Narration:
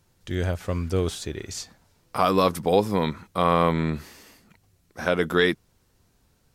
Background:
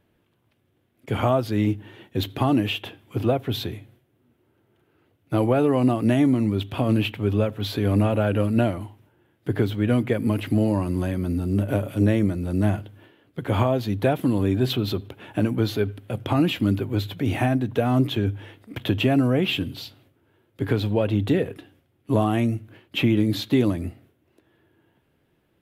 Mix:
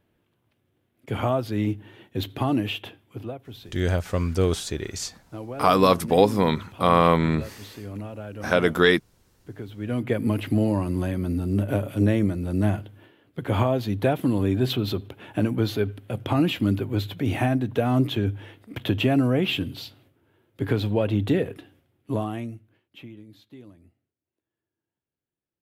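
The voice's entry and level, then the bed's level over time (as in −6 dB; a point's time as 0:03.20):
3.45 s, +2.5 dB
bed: 0:02.88 −3 dB
0:03.38 −15 dB
0:09.64 −15 dB
0:10.13 −1 dB
0:21.90 −1 dB
0:23.25 −26 dB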